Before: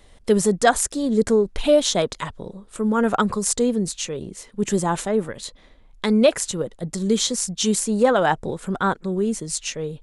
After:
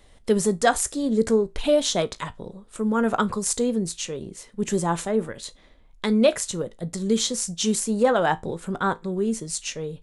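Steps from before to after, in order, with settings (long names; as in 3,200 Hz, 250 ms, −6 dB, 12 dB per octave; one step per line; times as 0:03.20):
tuned comb filter 56 Hz, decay 0.2 s, harmonics all, mix 50%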